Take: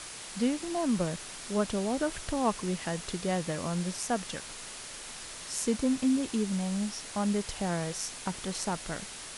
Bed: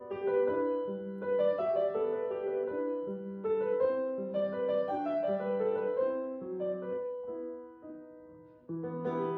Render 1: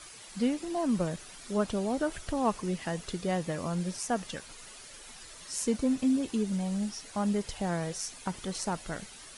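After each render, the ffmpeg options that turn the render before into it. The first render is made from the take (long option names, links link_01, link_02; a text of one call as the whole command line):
ffmpeg -i in.wav -af "afftdn=noise_reduction=10:noise_floor=-44" out.wav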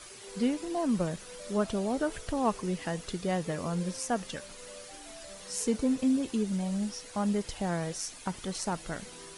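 ffmpeg -i in.wav -i bed.wav -filter_complex "[1:a]volume=-18.5dB[link_01];[0:a][link_01]amix=inputs=2:normalize=0" out.wav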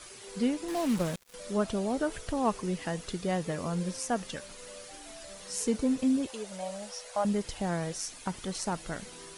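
ffmpeg -i in.wav -filter_complex "[0:a]asettb=1/sr,asplit=3[link_01][link_02][link_03];[link_01]atrim=end=0.684[link_04];[link_02]atrim=start=0.68:end=1.34,asetpts=PTS-STARTPTS,afade=type=in:duration=0.004:curve=qsin,afade=type=out:start_time=0.656:duration=0.004:curve=qsin,acrusher=bits=5:mix=0:aa=0.5[link_05];[link_03]atrim=start=1.336[link_06];[link_04][link_05]acrossfade=duration=0.004:curve1=hsin:curve2=qsin[link_07];[link_07][link_06]acrossfade=duration=0.004:curve1=qsin:curve2=hsin,asettb=1/sr,asplit=3[link_08][link_09][link_10];[link_08]atrim=end=6.274[link_11];[link_09]atrim=start=6.27:end=7.25,asetpts=PTS-STARTPTS,afade=type=in:duration=0.004:curve=qsin,afade=type=out:start_time=0.976:duration=0.004:curve=qsin,lowshelf=frequency=410:width_type=q:width=3:gain=-11.5[link_12];[link_10]atrim=start=7.246[link_13];[link_11][link_12]acrossfade=duration=0.004:curve1=hsin:curve2=qsin[link_14];[link_14][link_13]acrossfade=duration=0.004:curve1=qsin:curve2=hsin" out.wav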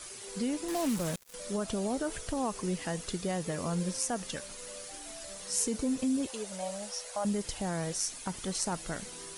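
ffmpeg -i in.wav -filter_complex "[0:a]acrossover=split=5600[link_01][link_02];[link_01]alimiter=limit=-24dB:level=0:latency=1:release=87[link_03];[link_02]acontrast=38[link_04];[link_03][link_04]amix=inputs=2:normalize=0" out.wav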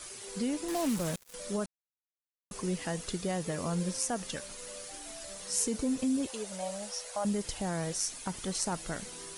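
ffmpeg -i in.wav -filter_complex "[0:a]asplit=3[link_01][link_02][link_03];[link_01]atrim=end=1.66,asetpts=PTS-STARTPTS,afade=type=out:start_time=1.656:duration=0.004:curve=hsin[link_04];[link_02]atrim=start=1.66:end=2.51,asetpts=PTS-STARTPTS,volume=0[link_05];[link_03]atrim=start=2.51,asetpts=PTS-STARTPTS,afade=type=in:duration=0.004:curve=hsin[link_06];[link_04][link_05][link_06]concat=n=3:v=0:a=1" out.wav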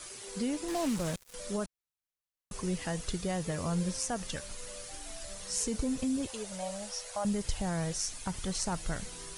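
ffmpeg -i in.wav -filter_complex "[0:a]acrossover=split=9500[link_01][link_02];[link_02]acompressor=threshold=-51dB:ratio=4:attack=1:release=60[link_03];[link_01][link_03]amix=inputs=2:normalize=0,asubboost=boost=3.5:cutoff=130" out.wav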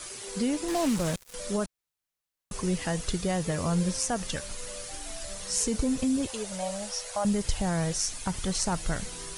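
ffmpeg -i in.wav -af "volume=5dB" out.wav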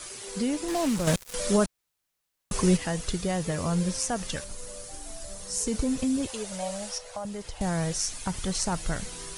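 ffmpeg -i in.wav -filter_complex "[0:a]asettb=1/sr,asplit=3[link_01][link_02][link_03];[link_01]atrim=end=1.074[link_04];[link_02]atrim=start=1.07:end=2.77,asetpts=PTS-STARTPTS,afade=type=in:duration=0.004:curve=qsin,afade=type=out:start_time=1.696:duration=0.004:curve=qsin,acontrast=76[link_05];[link_03]atrim=start=2.766[link_06];[link_04][link_05]acrossfade=duration=0.004:curve1=hsin:curve2=qsin[link_07];[link_07][link_06]acrossfade=duration=0.004:curve1=qsin:curve2=hsin,asettb=1/sr,asplit=3[link_08][link_09][link_10];[link_08]atrim=end=4.444[link_11];[link_09]atrim=start=4.44:end=5.67,asetpts=PTS-STARTPTS,afade=type=in:duration=0.004:curve=qsin,afade=type=out:start_time=1.226:duration=0.004:curve=qsin,equalizer=frequency=2500:width_type=o:width=2.2:gain=-8[link_12];[link_10]atrim=start=5.666[link_13];[link_11][link_12]acrossfade=duration=0.004:curve1=hsin:curve2=qsin[link_14];[link_14][link_13]acrossfade=duration=0.004:curve1=qsin:curve2=hsin,asettb=1/sr,asplit=3[link_15][link_16][link_17];[link_15]atrim=end=6.984[link_18];[link_16]atrim=start=6.98:end=7.61,asetpts=PTS-STARTPTS,afade=type=in:duration=0.004:curve=qsin,afade=type=out:start_time=0.626:duration=0.004:curve=qsin,acrossover=split=400|1100|5300[link_19][link_20][link_21][link_22];[link_19]acompressor=threshold=-41dB:ratio=3[link_23];[link_20]acompressor=threshold=-38dB:ratio=3[link_24];[link_21]acompressor=threshold=-50dB:ratio=3[link_25];[link_22]acompressor=threshold=-54dB:ratio=3[link_26];[link_23][link_24][link_25][link_26]amix=inputs=4:normalize=0[link_27];[link_17]atrim=start=7.606[link_28];[link_18][link_27]acrossfade=duration=0.004:curve1=hsin:curve2=qsin[link_29];[link_29][link_28]acrossfade=duration=0.004:curve1=qsin:curve2=hsin" out.wav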